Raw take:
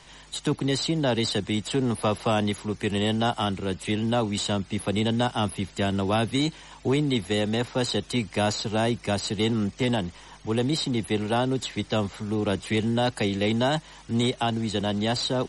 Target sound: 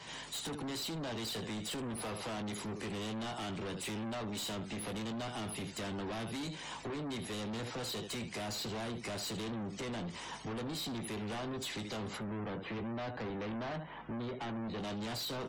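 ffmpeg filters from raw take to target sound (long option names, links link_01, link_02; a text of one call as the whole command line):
ffmpeg -i in.wav -filter_complex "[0:a]acontrast=67,asplit=3[link_01][link_02][link_03];[link_01]afade=type=out:start_time=12.16:duration=0.02[link_04];[link_02]lowpass=1900,afade=type=in:start_time=12.16:duration=0.02,afade=type=out:start_time=14.77:duration=0.02[link_05];[link_03]afade=type=in:start_time=14.77:duration=0.02[link_06];[link_04][link_05][link_06]amix=inputs=3:normalize=0,acompressor=threshold=-24dB:ratio=6,highpass=120,aecho=1:1:18|76:0.355|0.2,volume=34dB,asoftclip=hard,volume=-34dB,afftdn=noise_reduction=21:noise_floor=-54,volume=-4dB" out.wav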